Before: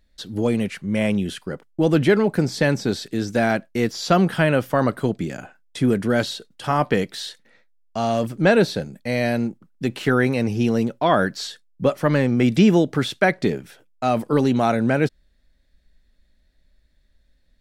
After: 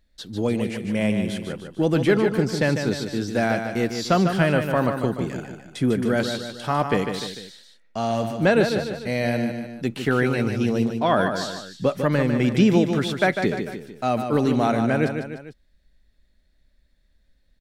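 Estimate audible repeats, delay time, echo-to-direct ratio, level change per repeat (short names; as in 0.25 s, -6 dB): 3, 0.149 s, -6.0 dB, -6.0 dB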